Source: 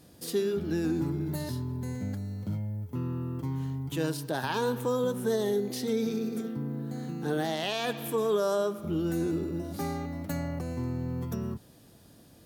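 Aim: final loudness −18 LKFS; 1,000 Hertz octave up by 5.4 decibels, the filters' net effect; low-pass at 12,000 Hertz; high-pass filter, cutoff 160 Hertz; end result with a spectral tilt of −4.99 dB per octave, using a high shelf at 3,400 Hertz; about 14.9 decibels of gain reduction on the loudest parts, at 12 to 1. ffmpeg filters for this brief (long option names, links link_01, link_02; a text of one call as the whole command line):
ffmpeg -i in.wav -af "highpass=160,lowpass=12000,equalizer=frequency=1000:width_type=o:gain=6,highshelf=frequency=3400:gain=7.5,acompressor=threshold=-37dB:ratio=12,volume=23dB" out.wav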